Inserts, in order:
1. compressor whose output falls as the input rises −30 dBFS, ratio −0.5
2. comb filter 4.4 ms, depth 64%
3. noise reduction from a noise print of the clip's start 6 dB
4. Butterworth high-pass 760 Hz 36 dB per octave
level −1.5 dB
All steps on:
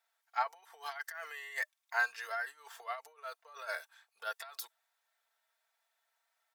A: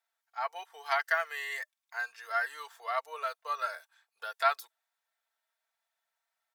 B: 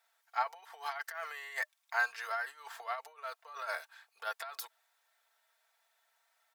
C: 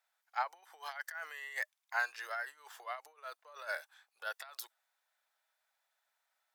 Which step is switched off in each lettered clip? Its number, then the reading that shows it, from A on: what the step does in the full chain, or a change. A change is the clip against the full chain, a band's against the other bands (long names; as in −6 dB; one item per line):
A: 1, 8 kHz band −6.5 dB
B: 3, change in momentary loudness spread −2 LU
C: 2, change in integrated loudness −1.5 LU